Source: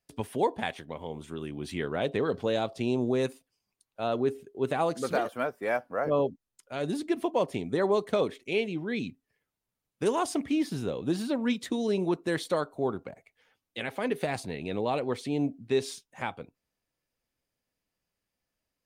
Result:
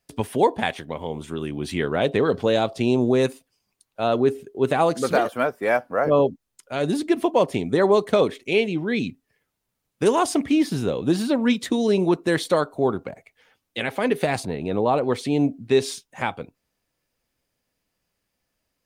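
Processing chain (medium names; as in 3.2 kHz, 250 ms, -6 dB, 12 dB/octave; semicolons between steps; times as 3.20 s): 14.45–15.04 s: resonant high shelf 1.6 kHz -6 dB, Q 1.5; trim +8 dB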